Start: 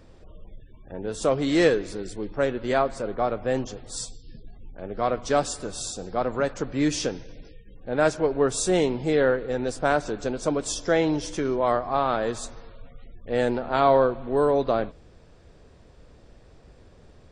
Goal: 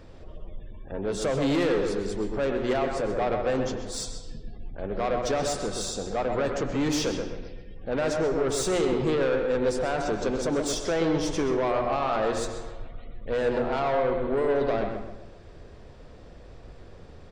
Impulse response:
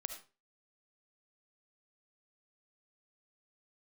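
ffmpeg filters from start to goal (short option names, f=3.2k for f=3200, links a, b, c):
-filter_complex "[0:a]bandreject=f=60:t=h:w=6,bandreject=f=120:t=h:w=6,bandreject=f=180:t=h:w=6,bandreject=f=240:t=h:w=6,bandreject=f=300:t=h:w=6,bandreject=f=360:t=h:w=6,alimiter=limit=-16.5dB:level=0:latency=1,asoftclip=type=tanh:threshold=-25.5dB,asplit=2[a][b];[b]adelay=128,lowpass=f=1.9k:p=1,volume=-4.5dB,asplit=2[c][d];[d]adelay=128,lowpass=f=1.9k:p=1,volume=0.42,asplit=2[e][f];[f]adelay=128,lowpass=f=1.9k:p=1,volume=0.42,asplit=2[g][h];[h]adelay=128,lowpass=f=1.9k:p=1,volume=0.42,asplit=2[i][j];[j]adelay=128,lowpass=f=1.9k:p=1,volume=0.42[k];[a][c][e][g][i][k]amix=inputs=6:normalize=0,asplit=2[l][m];[1:a]atrim=start_sample=2205,asetrate=23373,aresample=44100,lowpass=7k[n];[m][n]afir=irnorm=-1:irlink=0,volume=-5.5dB[o];[l][o]amix=inputs=2:normalize=0"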